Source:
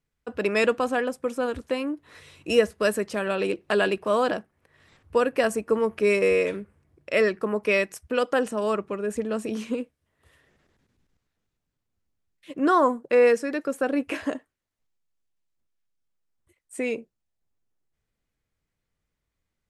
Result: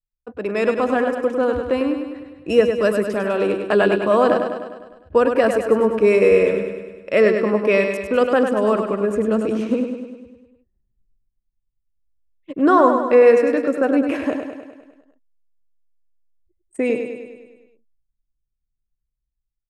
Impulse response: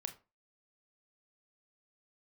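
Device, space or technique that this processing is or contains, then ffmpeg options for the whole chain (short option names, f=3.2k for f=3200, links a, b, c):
voice memo with heavy noise removal: -af "highshelf=f=2.1k:g=-10.5,anlmdn=0.00631,dynaudnorm=f=470:g=3:m=9dB,aecho=1:1:101|202|303|404|505|606|707|808:0.473|0.279|0.165|0.0972|0.0573|0.0338|0.02|0.0118,volume=-1dB"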